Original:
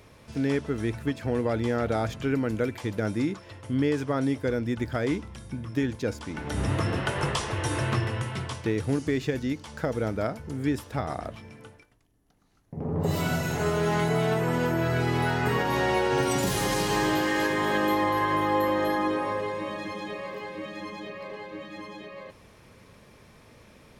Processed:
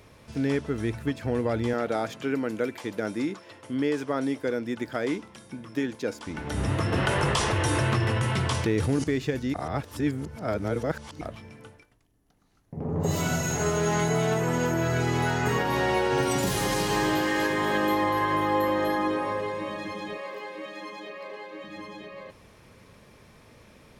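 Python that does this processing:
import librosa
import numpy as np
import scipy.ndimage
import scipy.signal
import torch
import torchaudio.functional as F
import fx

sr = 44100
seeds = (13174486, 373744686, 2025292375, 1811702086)

y = fx.highpass(x, sr, hz=220.0, slope=12, at=(1.73, 6.27))
y = fx.env_flatten(y, sr, amount_pct=70, at=(6.92, 9.04))
y = fx.peak_eq(y, sr, hz=6700.0, db=12.5, octaves=0.22, at=(12.89, 15.59))
y = fx.highpass(y, sr, hz=330.0, slope=12, at=(20.17, 21.64))
y = fx.edit(y, sr, fx.reverse_span(start_s=9.54, length_s=1.67), tone=tone)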